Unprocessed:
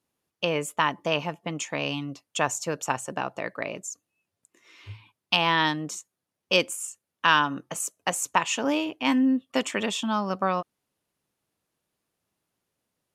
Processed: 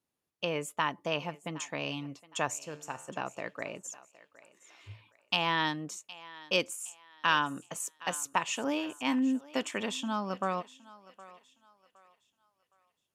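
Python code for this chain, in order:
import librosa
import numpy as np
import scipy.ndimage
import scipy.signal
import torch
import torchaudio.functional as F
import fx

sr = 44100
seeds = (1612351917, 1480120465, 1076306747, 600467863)

y = fx.comb_fb(x, sr, f0_hz=75.0, decay_s=0.68, harmonics='all', damping=0.0, mix_pct=60, at=(2.59, 3.09))
y = fx.echo_thinned(y, sr, ms=765, feedback_pct=35, hz=450.0, wet_db=-18)
y = y * librosa.db_to_amplitude(-6.5)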